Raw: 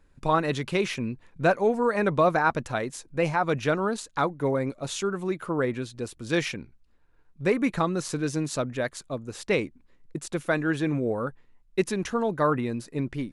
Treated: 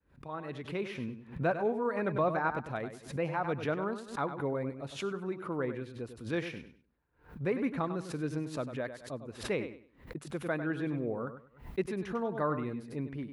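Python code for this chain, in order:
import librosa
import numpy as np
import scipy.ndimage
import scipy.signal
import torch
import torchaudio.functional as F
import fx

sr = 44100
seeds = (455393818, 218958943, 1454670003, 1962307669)

p1 = fx.fade_in_head(x, sr, length_s=1.0)
p2 = scipy.signal.sosfilt(scipy.signal.butter(4, 42.0, 'highpass', fs=sr, output='sos'), p1)
p3 = fx.peak_eq(p2, sr, hz=7200.0, db=-15.0, octaves=1.5)
p4 = p3 + fx.echo_feedback(p3, sr, ms=99, feedback_pct=25, wet_db=-10.0, dry=0)
p5 = fx.pre_swell(p4, sr, db_per_s=140.0)
y = p5 * librosa.db_to_amplitude(-8.0)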